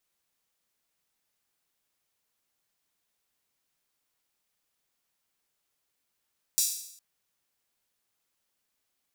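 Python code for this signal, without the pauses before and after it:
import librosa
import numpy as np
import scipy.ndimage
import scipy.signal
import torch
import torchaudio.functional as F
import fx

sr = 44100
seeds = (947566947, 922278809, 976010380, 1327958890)

y = fx.drum_hat_open(sr, length_s=0.41, from_hz=5700.0, decay_s=0.72)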